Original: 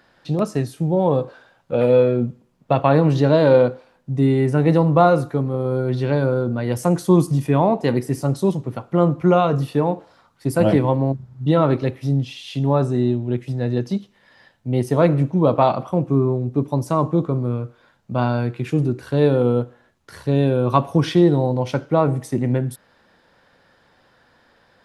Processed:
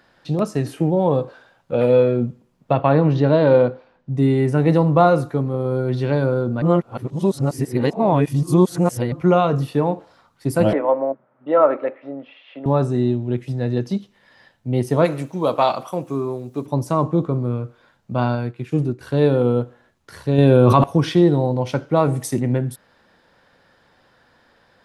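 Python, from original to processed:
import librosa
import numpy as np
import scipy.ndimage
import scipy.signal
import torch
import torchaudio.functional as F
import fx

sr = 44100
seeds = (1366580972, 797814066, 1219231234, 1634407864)

y = fx.spec_box(x, sr, start_s=0.66, length_s=0.24, low_hz=240.0, high_hz=3200.0, gain_db=9)
y = fx.air_absorb(y, sr, metres=150.0, at=(2.72, 4.17))
y = fx.cabinet(y, sr, low_hz=320.0, low_slope=24, high_hz=2200.0, hz=(380.0, 580.0, 1300.0), db=(-8, 10, 5), at=(10.73, 12.66))
y = fx.riaa(y, sr, side='recording', at=(15.04, 16.65), fade=0.02)
y = fx.upward_expand(y, sr, threshold_db=-35.0, expansion=1.5, at=(18.35, 19.01))
y = fx.env_flatten(y, sr, amount_pct=100, at=(20.38, 20.84))
y = fx.high_shelf(y, sr, hz=fx.line((21.95, 4400.0), (22.39, 3100.0)), db=11.5, at=(21.95, 22.39), fade=0.02)
y = fx.edit(y, sr, fx.reverse_span(start_s=6.62, length_s=2.5), tone=tone)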